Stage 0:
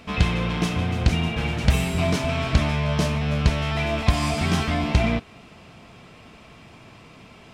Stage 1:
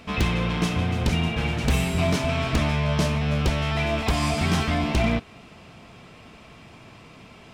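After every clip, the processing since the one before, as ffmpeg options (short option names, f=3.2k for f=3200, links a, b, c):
-af "aeval=exprs='0.211*(abs(mod(val(0)/0.211+3,4)-2)-1)':c=same"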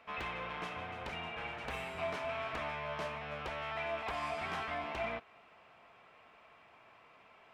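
-filter_complex "[0:a]acrossover=split=520 2600:gain=0.1 1 0.141[a][b][c];[a][b][c]amix=inputs=3:normalize=0,volume=-8dB"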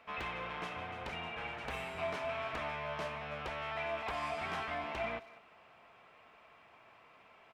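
-filter_complex "[0:a]asplit=2[a][b];[b]adelay=200,highpass=300,lowpass=3.4k,asoftclip=type=hard:threshold=-36dB,volume=-17dB[c];[a][c]amix=inputs=2:normalize=0"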